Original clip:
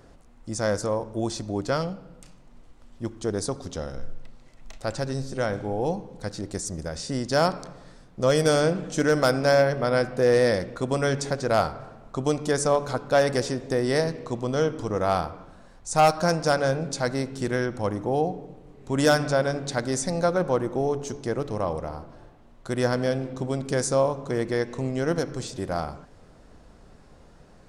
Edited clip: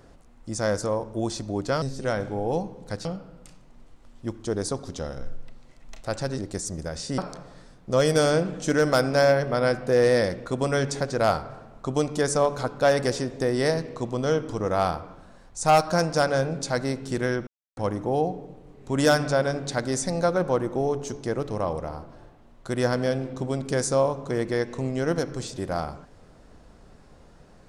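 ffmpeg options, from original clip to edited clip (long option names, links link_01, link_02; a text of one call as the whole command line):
ffmpeg -i in.wav -filter_complex "[0:a]asplit=6[link_01][link_02][link_03][link_04][link_05][link_06];[link_01]atrim=end=1.822[link_07];[link_02]atrim=start=5.148:end=6.382[link_08];[link_03]atrim=start=1.818:end=5.152[link_09];[link_04]atrim=start=6.378:end=7.182[link_10];[link_05]atrim=start=7.478:end=17.77,asetpts=PTS-STARTPTS,afade=type=out:start_time=10.288:duration=0.004:curve=hsin,apad=pad_dur=0.3[link_11];[link_06]atrim=start=17.77,asetpts=PTS-STARTPTS,afade=type=in:duration=0.004:curve=hsin[link_12];[link_07][link_08]acrossfade=duration=0.004:curve1=hsin:curve2=hsin[link_13];[link_13][link_09]acrossfade=duration=0.004:curve1=hsin:curve2=hsin[link_14];[link_14][link_10]acrossfade=duration=0.004:curve1=hsin:curve2=hsin[link_15];[link_11][link_12]concat=n=2:v=0:a=1[link_16];[link_15][link_16]acrossfade=duration=0.004:curve1=hsin:curve2=hsin" out.wav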